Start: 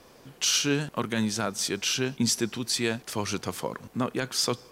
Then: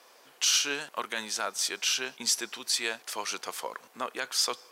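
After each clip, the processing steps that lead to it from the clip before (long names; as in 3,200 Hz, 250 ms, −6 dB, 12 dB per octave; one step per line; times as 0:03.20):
high-pass filter 680 Hz 12 dB per octave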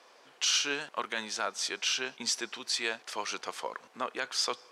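high-frequency loss of the air 68 metres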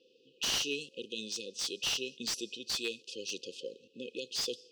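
brick-wall band-stop 540–2,500 Hz
low-pass that shuts in the quiet parts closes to 2,500 Hz, open at −31 dBFS
slew-rate limiting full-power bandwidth 140 Hz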